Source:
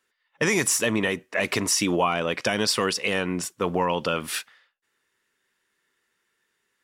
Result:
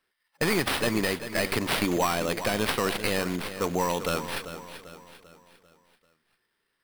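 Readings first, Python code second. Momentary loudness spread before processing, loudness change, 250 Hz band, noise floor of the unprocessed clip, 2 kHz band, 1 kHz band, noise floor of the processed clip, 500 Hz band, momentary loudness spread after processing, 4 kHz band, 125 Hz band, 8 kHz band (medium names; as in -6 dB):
6 LU, -3.0 dB, -2.0 dB, -75 dBFS, -3.0 dB, -2.0 dB, -78 dBFS, -2.0 dB, 11 LU, -3.0 dB, -1.0 dB, -9.0 dB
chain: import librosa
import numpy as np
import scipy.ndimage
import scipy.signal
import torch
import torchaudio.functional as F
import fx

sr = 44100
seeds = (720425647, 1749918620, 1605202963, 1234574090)

y = fx.tracing_dist(x, sr, depth_ms=0.39)
y = fx.echo_feedback(y, sr, ms=393, feedback_pct=45, wet_db=-11.5)
y = fx.sample_hold(y, sr, seeds[0], rate_hz=6800.0, jitter_pct=0)
y = y * 10.0 ** (-3.0 / 20.0)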